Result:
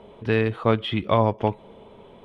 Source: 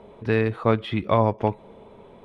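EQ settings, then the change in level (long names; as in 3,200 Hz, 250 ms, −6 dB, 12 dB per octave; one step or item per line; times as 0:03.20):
parametric band 3,100 Hz +8 dB 0.32 octaves
0.0 dB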